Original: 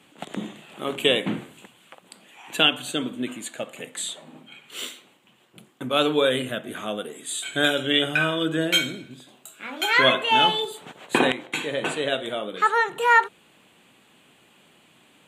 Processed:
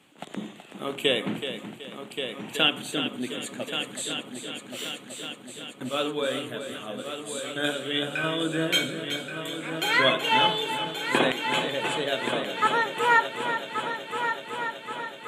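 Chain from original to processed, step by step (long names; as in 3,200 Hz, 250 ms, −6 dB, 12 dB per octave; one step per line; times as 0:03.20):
0:05.89–0:08.24: flanger 1.4 Hz, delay 5.9 ms, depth 8.3 ms, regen +49%
echo machine with several playback heads 376 ms, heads first and third, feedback 71%, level −9.5 dB
level −3.5 dB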